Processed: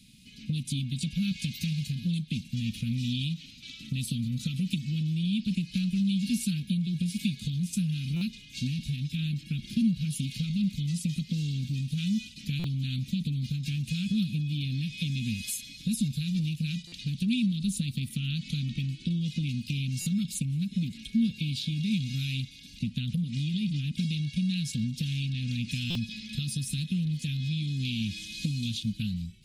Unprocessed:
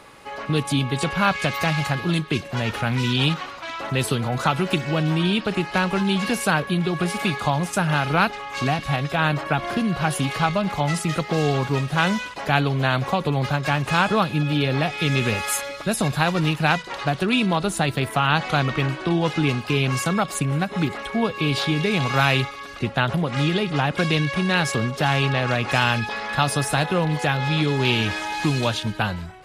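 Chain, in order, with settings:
elliptic band-stop filter 190–3,500 Hz, stop band 70 dB
parametric band 2,400 Hz +9 dB 0.28 octaves
downward compressor, threshold −27 dBFS, peak gain reduction 9 dB
hollow resonant body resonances 240/500/1,300 Hz, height 12 dB, ringing for 40 ms
buffer that repeats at 0:08.16/0:12.59/0:16.87/0:20.01/0:25.90, samples 256, times 8
level −3.5 dB

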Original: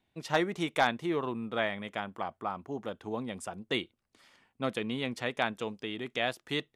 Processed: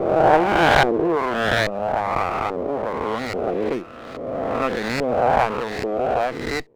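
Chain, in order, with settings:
peak hold with a rise ahead of every peak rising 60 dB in 2.21 s
auto-filter low-pass saw up 1.2 Hz 470–2,400 Hz
windowed peak hold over 9 samples
level +6 dB

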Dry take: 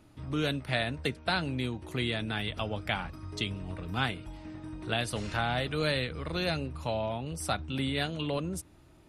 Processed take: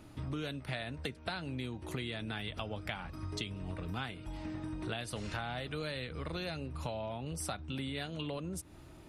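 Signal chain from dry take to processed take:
downward compressor 6 to 1, threshold −41 dBFS, peak gain reduction 16 dB
level +4.5 dB

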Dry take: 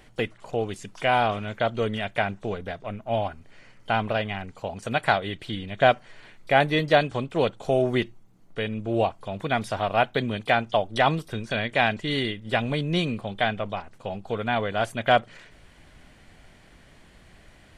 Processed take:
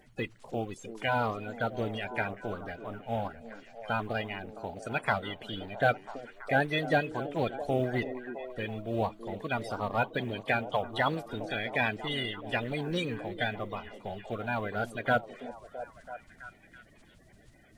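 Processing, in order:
spectral magnitudes quantised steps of 30 dB
log-companded quantiser 8 bits
echo through a band-pass that steps 331 ms, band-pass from 320 Hz, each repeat 0.7 octaves, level −7 dB
level −6.5 dB

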